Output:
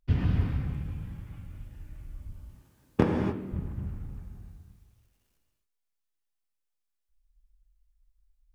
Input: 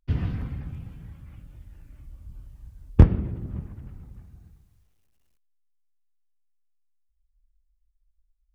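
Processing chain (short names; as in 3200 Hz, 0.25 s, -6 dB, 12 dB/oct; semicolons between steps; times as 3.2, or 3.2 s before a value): 2.33–3.52 HPF 250 Hz 12 dB/oct; non-linear reverb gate 0.31 s flat, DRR 1 dB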